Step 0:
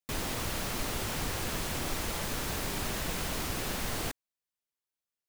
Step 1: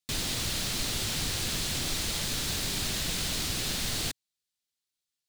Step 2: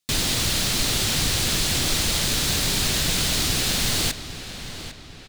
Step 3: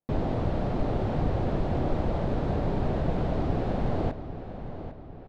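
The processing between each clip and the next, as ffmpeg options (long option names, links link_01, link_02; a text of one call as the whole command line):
ffmpeg -i in.wav -af "equalizer=frequency=125:width_type=o:width=1:gain=3,equalizer=frequency=500:width_type=o:width=1:gain=-3,equalizer=frequency=1000:width_type=o:width=1:gain=-5,equalizer=frequency=4000:width_type=o:width=1:gain=9,equalizer=frequency=8000:width_type=o:width=1:gain=5" out.wav
ffmpeg -i in.wav -filter_complex "[0:a]asplit=2[link_01][link_02];[link_02]adelay=801,lowpass=frequency=4400:poles=1,volume=-11dB,asplit=2[link_03][link_04];[link_04]adelay=801,lowpass=frequency=4400:poles=1,volume=0.48,asplit=2[link_05][link_06];[link_06]adelay=801,lowpass=frequency=4400:poles=1,volume=0.48,asplit=2[link_07][link_08];[link_08]adelay=801,lowpass=frequency=4400:poles=1,volume=0.48,asplit=2[link_09][link_10];[link_10]adelay=801,lowpass=frequency=4400:poles=1,volume=0.48[link_11];[link_01][link_03][link_05][link_07][link_09][link_11]amix=inputs=6:normalize=0,volume=8.5dB" out.wav
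ffmpeg -i in.wav -af "lowpass=frequency=690:width_type=q:width=1.7" out.wav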